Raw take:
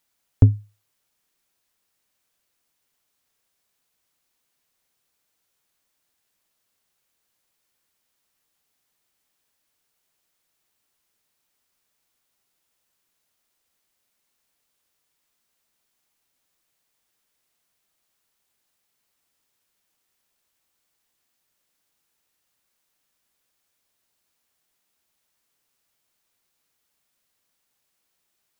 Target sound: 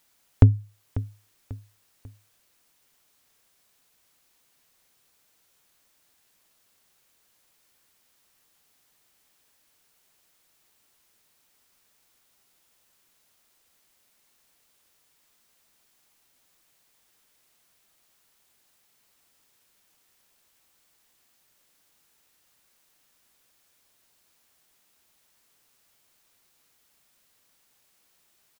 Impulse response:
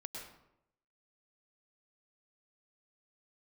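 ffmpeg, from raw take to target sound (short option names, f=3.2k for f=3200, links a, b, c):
-af "acompressor=threshold=-33dB:ratio=1.5,aecho=1:1:543|1086|1629:0.168|0.0655|0.0255,volume=8dB"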